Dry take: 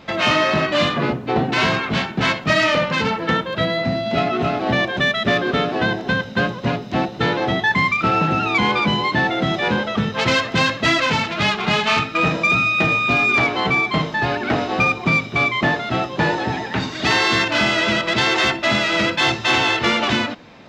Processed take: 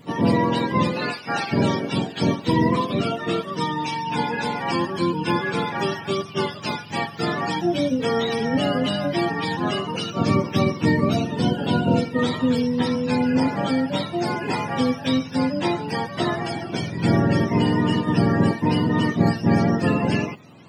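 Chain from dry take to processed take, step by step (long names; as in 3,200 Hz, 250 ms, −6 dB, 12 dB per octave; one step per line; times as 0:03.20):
frequency axis turned over on the octave scale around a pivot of 780 Hz
level −3 dB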